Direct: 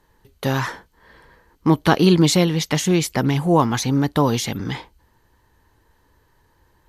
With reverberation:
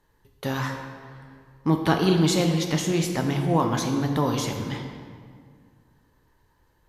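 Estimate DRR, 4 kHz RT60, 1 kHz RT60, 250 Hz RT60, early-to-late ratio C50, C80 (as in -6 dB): 3.0 dB, 1.3 s, 1.9 s, 2.3 s, 5.0 dB, 6.5 dB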